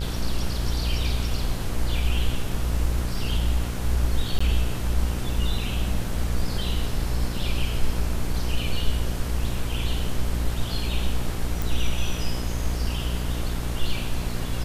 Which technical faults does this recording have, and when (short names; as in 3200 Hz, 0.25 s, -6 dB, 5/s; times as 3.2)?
buzz 60 Hz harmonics 27 -28 dBFS
4.39–4.41 gap 15 ms
11.62 pop